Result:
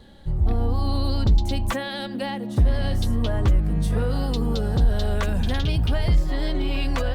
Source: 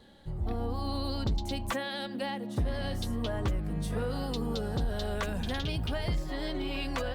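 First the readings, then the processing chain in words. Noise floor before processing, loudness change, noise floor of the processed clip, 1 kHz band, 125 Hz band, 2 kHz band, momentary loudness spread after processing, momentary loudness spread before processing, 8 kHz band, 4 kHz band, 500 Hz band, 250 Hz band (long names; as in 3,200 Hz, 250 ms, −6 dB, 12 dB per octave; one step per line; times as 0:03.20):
−39 dBFS, +9.5 dB, −32 dBFS, +5.0 dB, +11.5 dB, +5.0 dB, 5 LU, 2 LU, +5.0 dB, +5.0 dB, +5.5 dB, +7.0 dB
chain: low-shelf EQ 120 Hz +10 dB
level +5 dB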